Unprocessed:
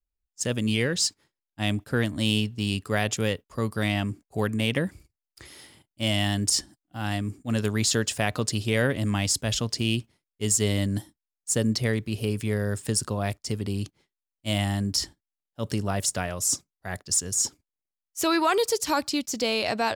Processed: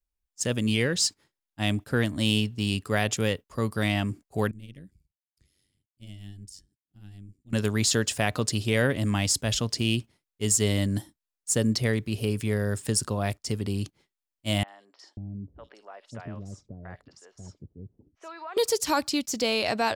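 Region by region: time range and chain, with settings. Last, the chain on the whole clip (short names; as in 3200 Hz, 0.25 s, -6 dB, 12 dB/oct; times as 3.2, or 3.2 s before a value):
4.51–7.53 passive tone stack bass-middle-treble 10-0-1 + AM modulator 96 Hz, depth 55%
14.63–18.57 compressor 2.5:1, threshold -36 dBFS + tape spacing loss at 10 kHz 29 dB + three bands offset in time mids, highs, lows 50/540 ms, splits 470/3200 Hz
whole clip: dry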